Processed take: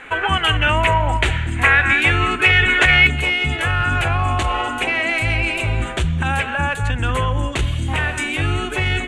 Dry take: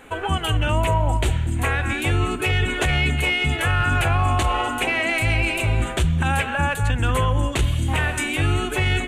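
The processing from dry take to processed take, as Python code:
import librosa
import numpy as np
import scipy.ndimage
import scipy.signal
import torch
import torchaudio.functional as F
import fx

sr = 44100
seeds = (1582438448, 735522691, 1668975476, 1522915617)

y = scipy.signal.sosfilt(scipy.signal.butter(2, 8800.0, 'lowpass', fs=sr, output='sos'), x)
y = fx.peak_eq(y, sr, hz=1900.0, db=fx.steps((0.0, 13.5), (3.07, 3.0)), octaves=1.7)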